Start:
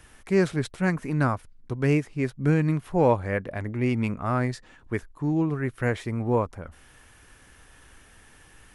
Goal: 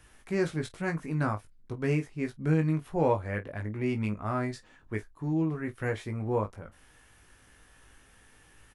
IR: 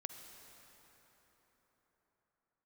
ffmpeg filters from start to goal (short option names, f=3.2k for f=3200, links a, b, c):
-af "aecho=1:1:19|48:0.562|0.126,volume=-6.5dB"